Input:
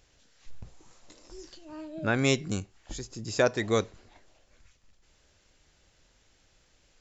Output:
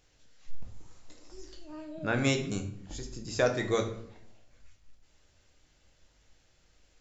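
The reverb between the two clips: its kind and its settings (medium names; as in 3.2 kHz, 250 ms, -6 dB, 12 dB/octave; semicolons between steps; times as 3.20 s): simulated room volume 120 m³, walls mixed, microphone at 0.56 m; trim -4 dB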